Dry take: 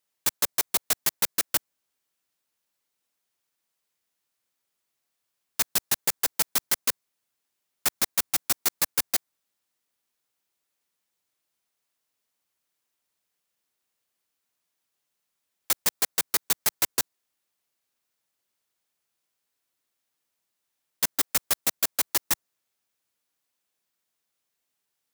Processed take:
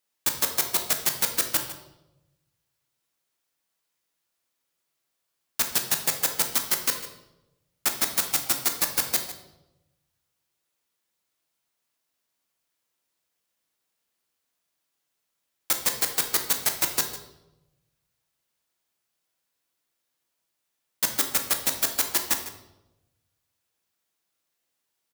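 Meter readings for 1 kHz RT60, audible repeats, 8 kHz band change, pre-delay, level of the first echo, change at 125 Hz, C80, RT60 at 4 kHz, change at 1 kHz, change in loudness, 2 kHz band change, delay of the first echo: 0.80 s, 1, +1.0 dB, 3 ms, -14.0 dB, +2.5 dB, 9.5 dB, 0.70 s, +1.5 dB, +1.0 dB, +1.5 dB, 0.152 s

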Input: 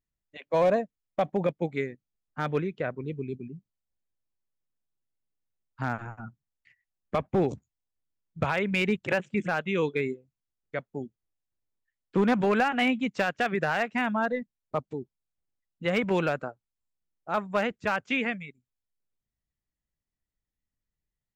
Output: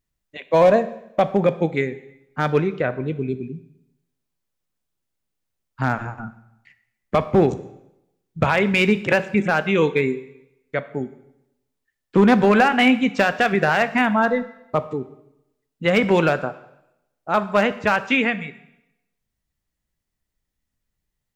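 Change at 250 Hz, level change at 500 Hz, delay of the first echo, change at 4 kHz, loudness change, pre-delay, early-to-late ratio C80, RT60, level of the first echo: +9.0 dB, +9.0 dB, none, +9.0 dB, +8.5 dB, 6 ms, 17.5 dB, 0.85 s, none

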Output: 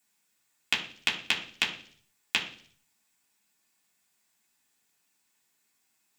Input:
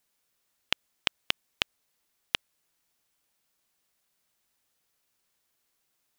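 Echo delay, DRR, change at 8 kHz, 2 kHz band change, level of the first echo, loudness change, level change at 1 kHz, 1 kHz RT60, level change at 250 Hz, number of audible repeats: none, -4.5 dB, +4.5 dB, +4.5 dB, none, +3.0 dB, +1.5 dB, 0.45 s, +3.5 dB, none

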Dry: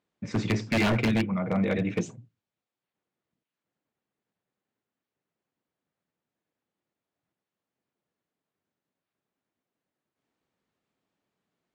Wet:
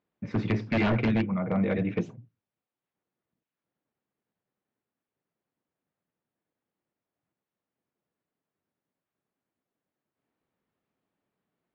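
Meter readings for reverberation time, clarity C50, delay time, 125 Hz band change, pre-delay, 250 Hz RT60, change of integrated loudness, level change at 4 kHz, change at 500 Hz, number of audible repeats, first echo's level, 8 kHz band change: none, none, none, 0.0 dB, none, none, -0.5 dB, -6.5 dB, -0.5 dB, none, none, under -15 dB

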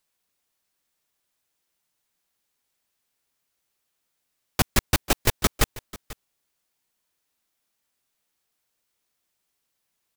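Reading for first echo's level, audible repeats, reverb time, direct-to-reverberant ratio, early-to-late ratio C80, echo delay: -18.5 dB, 1, none, none, none, 0.49 s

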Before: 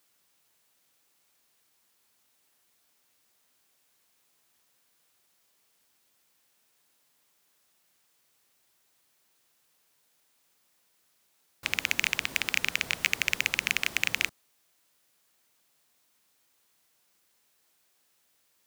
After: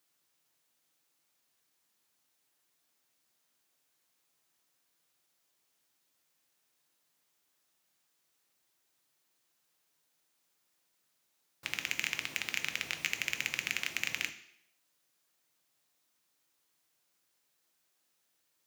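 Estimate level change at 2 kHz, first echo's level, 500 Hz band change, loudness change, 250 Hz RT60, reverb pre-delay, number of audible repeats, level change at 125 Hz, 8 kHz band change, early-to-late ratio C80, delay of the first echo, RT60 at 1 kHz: -7.0 dB, none, -7.0 dB, -7.0 dB, 0.75 s, 3 ms, none, -6.5 dB, -6.0 dB, 15.0 dB, none, 0.70 s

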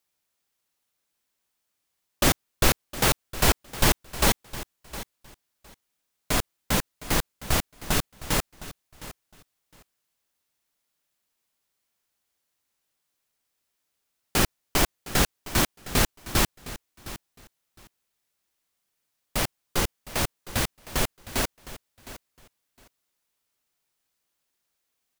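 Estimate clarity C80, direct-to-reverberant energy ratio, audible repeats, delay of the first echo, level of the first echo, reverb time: none, none, 2, 0.711 s, -16.0 dB, none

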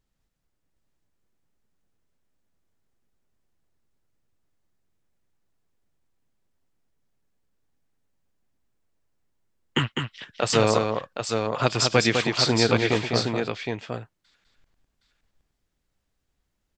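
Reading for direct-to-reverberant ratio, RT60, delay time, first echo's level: none, none, 0.203 s, -5.0 dB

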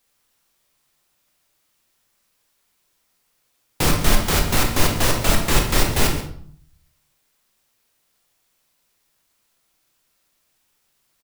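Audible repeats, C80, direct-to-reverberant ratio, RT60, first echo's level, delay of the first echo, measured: 1, 9.0 dB, 1.5 dB, 0.60 s, -14.0 dB, 0.136 s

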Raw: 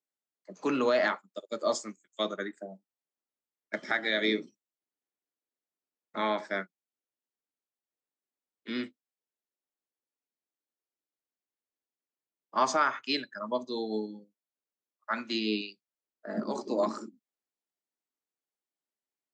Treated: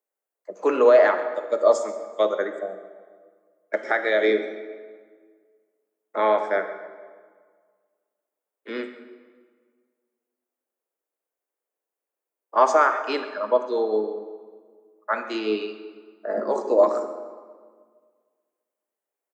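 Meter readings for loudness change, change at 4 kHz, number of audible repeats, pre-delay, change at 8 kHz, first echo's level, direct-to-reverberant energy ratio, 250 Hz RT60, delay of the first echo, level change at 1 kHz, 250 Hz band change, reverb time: +8.5 dB, -3.0 dB, 1, 36 ms, +0.5 dB, -18.0 dB, 8.5 dB, 1.9 s, 0.135 s, +8.5 dB, +2.0 dB, 1.7 s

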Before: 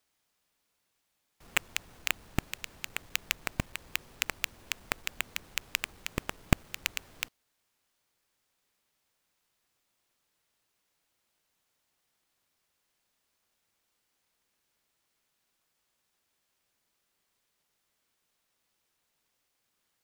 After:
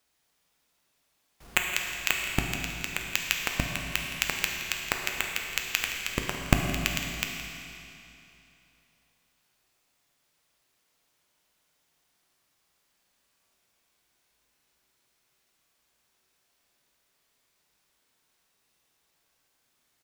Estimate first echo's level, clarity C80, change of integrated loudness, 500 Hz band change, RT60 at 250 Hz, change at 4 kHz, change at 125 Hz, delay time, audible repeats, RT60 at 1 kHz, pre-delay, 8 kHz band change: -14.5 dB, 3.0 dB, +5.5 dB, +6.0 dB, 2.9 s, +5.5 dB, +5.0 dB, 0.168 s, 1, 2.9 s, 7 ms, +5.5 dB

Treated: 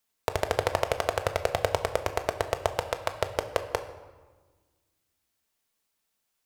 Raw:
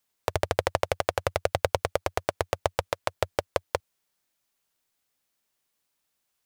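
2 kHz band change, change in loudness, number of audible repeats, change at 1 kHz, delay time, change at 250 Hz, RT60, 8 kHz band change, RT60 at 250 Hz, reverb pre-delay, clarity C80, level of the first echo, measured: -0.5 dB, -0.5 dB, none, 0.0 dB, none, -1.0 dB, 1.4 s, -0.5 dB, 2.2 s, 4 ms, 13.0 dB, none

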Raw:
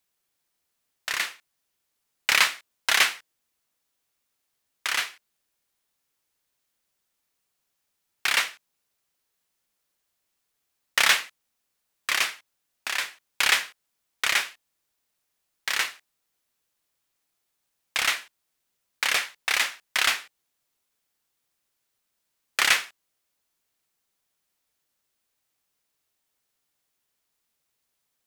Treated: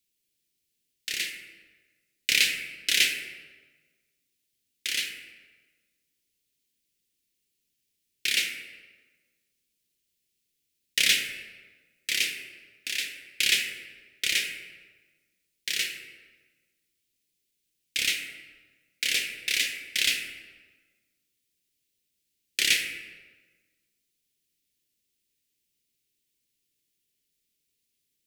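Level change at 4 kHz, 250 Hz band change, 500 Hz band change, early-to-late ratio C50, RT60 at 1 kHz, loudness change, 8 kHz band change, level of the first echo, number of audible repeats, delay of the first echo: 0.0 dB, +1.5 dB, -7.5 dB, 5.5 dB, 1.4 s, -2.0 dB, 0.0 dB, none, none, none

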